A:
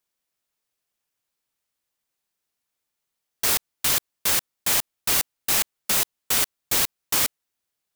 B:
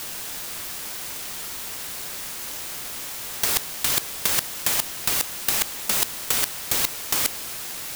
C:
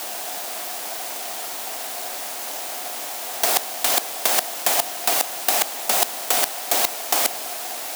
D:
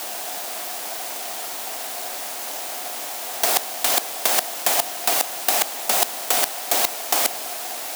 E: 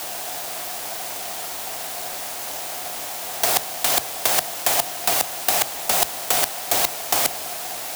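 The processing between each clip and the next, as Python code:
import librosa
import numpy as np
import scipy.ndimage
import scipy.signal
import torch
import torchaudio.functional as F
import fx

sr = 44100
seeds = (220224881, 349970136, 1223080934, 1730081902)

y1 = fx.quant_dither(x, sr, seeds[0], bits=8, dither='triangular')
y1 = fx.over_compress(y1, sr, threshold_db=-26.0, ratio=-0.5)
y1 = y1 * 10.0 ** (7.5 / 20.0)
y2 = scipy.signal.sosfilt(scipy.signal.butter(4, 230.0, 'highpass', fs=sr, output='sos'), y1)
y2 = fx.peak_eq(y2, sr, hz=710.0, db=15.0, octaves=0.52)
y2 = y2 * 10.0 ** (2.0 / 20.0)
y3 = y2
y4 = fx.octave_divider(y3, sr, octaves=2, level_db=-5.0)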